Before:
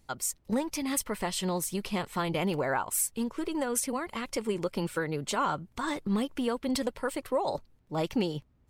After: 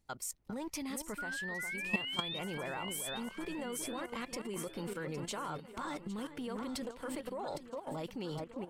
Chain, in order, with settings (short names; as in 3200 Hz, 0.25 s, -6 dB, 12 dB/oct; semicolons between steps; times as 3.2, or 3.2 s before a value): painted sound rise, 1.18–2.39, 1400–3800 Hz -27 dBFS; echo with dull and thin repeats by turns 0.405 s, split 2300 Hz, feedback 69%, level -7.5 dB; level quantiser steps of 12 dB; gain -3.5 dB